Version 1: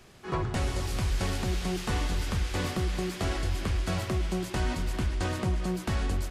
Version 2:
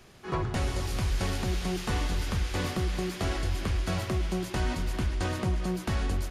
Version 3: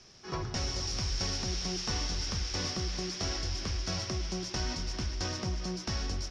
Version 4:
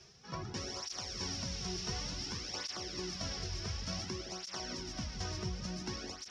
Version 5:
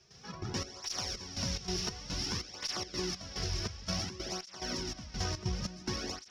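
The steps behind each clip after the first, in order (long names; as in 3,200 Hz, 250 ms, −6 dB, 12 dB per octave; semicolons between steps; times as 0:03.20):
notch filter 7,900 Hz, Q 14
low-pass with resonance 5,500 Hz, resonance Q 12; level −6 dB
reversed playback; upward compression, threshold −41 dBFS; reversed playback; echo with a time of its own for lows and highs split 580 Hz, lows 163 ms, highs 434 ms, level −7 dB; through-zero flanger with one copy inverted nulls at 0.56 Hz, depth 4 ms; level −3 dB
gate pattern ".xx.xx..xxx." 143 BPM −12 dB; in parallel at −8 dB: asymmetric clip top −47.5 dBFS; on the sum: level +3 dB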